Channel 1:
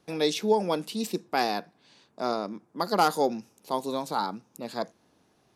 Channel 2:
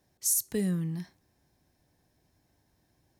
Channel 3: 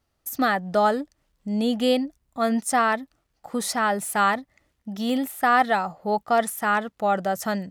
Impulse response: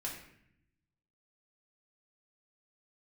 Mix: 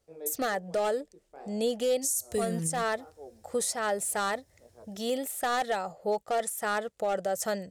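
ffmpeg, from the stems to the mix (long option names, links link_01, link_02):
-filter_complex "[0:a]flanger=delay=15.5:depth=7.6:speed=1.9,lowpass=1300,volume=-15dB[link_01];[1:a]equalizer=frequency=84:width_type=o:width=0.64:gain=13,adelay=1800,volume=1.5dB[link_02];[2:a]volume=16dB,asoftclip=hard,volume=-16dB,volume=-4.5dB,asplit=2[link_03][link_04];[link_04]apad=whole_len=244766[link_05];[link_01][link_05]sidechaincompress=threshold=-35dB:ratio=8:attack=16:release=803[link_06];[link_06][link_02][link_03]amix=inputs=3:normalize=0,equalizer=frequency=250:width_type=o:width=1:gain=-8,equalizer=frequency=500:width_type=o:width=1:gain=10,equalizer=frequency=1000:width_type=o:width=1:gain=-6,equalizer=frequency=8000:width_type=o:width=1:gain=10,alimiter=limit=-20dB:level=0:latency=1:release=236"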